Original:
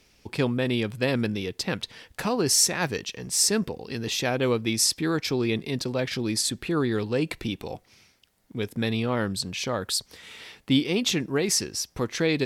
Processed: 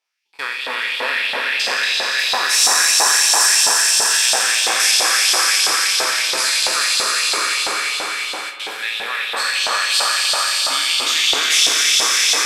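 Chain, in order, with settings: spectral sustain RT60 1.95 s; on a send: echo with a slow build-up 87 ms, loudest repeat 5, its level -5 dB; on the sum: LFO high-pass saw up 3 Hz 770–3600 Hz; gate with hold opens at -16 dBFS; spring tank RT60 3 s, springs 47 ms, chirp 70 ms, DRR 9.5 dB

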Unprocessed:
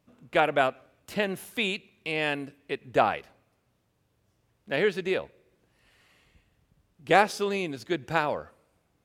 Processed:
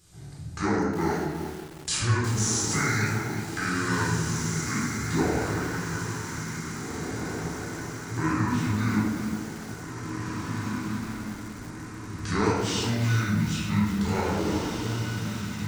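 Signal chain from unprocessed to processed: compression 2:1, threshold -48 dBFS, peak gain reduction 18.5 dB; tilt EQ +3 dB/octave; on a send: echo that smears into a reverb 1174 ms, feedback 55%, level -5.5 dB; on the sum: speed mistake 78 rpm record played at 45 rpm; tone controls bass +14 dB, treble +11 dB; simulated room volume 660 m³, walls mixed, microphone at 3.9 m; bit-crushed delay 362 ms, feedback 35%, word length 6-bit, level -9.5 dB

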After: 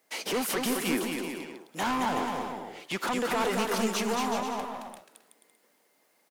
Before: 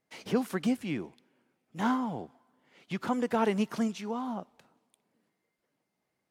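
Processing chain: high-pass 370 Hz 12 dB/octave; treble shelf 6.8 kHz +9 dB; in parallel at +1 dB: peak limiter -26.5 dBFS, peak gain reduction 9.5 dB; on the sum: saturation -30 dBFS, distortion -7 dB; on a send: bouncing-ball echo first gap 220 ms, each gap 0.7×, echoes 5; on the sum: trim +4.5 dB

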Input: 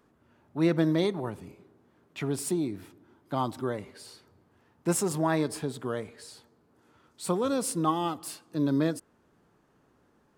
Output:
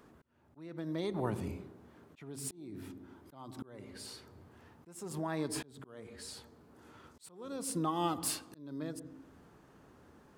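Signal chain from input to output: on a send at -22.5 dB: reverberation RT60 0.50 s, pre-delay 76 ms; on the sum: compression 10:1, threshold -33 dBFS, peak gain reduction 14.5 dB; slow attack 758 ms; trim +5.5 dB

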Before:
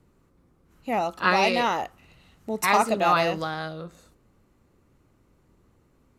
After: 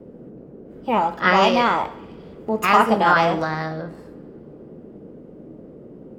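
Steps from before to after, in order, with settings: peaking EQ 9.4 kHz -14.5 dB 2.7 oct; formant shift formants +3 st; band noise 130–490 Hz -48 dBFS; two-slope reverb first 0.65 s, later 3.5 s, from -28 dB, DRR 10 dB; trim +6.5 dB

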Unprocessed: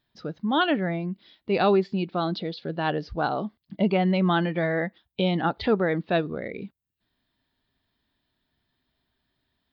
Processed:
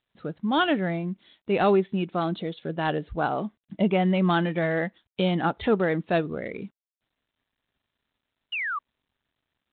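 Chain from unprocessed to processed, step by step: painted sound fall, 8.52–8.79 s, 1.1–3 kHz -29 dBFS; G.726 32 kbps 8 kHz

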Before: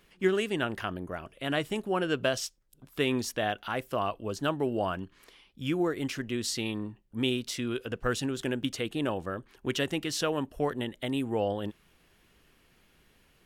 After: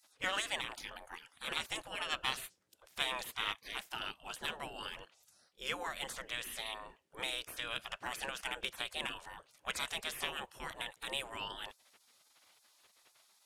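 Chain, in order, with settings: low-pass 11 kHz 12 dB/octave; spectral gate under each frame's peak -20 dB weak; in parallel at -6.5 dB: hard clipper -37 dBFS, distortion -11 dB; on the sum: trim +2.5 dB

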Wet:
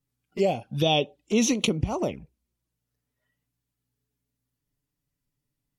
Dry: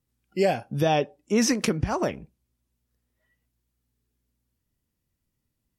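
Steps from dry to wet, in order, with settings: 0.61–1.67 s: peaking EQ 3.4 kHz +10.5 dB 0.92 oct; touch-sensitive flanger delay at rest 7 ms, full sweep at -22 dBFS

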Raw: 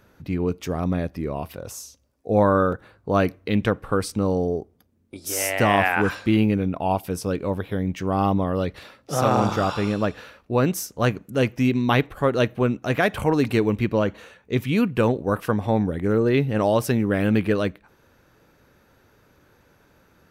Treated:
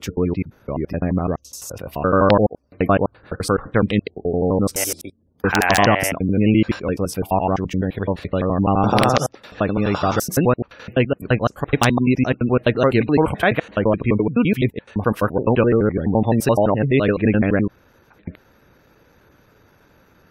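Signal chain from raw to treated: slices played last to first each 85 ms, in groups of 8; integer overflow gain 6.5 dB; spectral gate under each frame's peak -30 dB strong; trim +4 dB

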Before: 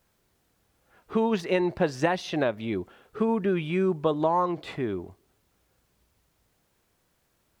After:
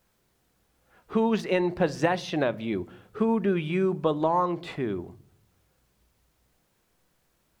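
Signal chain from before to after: de-esser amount 75%; on a send: bass shelf 210 Hz +11 dB + reverberation RT60 0.60 s, pre-delay 4 ms, DRR 17.5 dB

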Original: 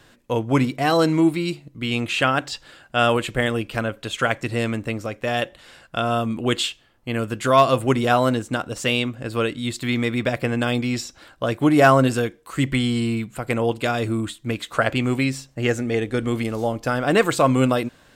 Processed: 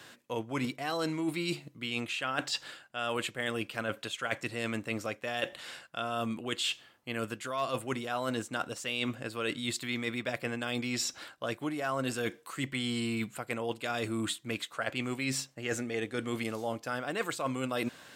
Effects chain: high-pass 120 Hz; tilt shelf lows -3.5 dB, about 740 Hz; reverse; compression 10:1, threshold -30 dBFS, peak gain reduction 21.5 dB; reverse

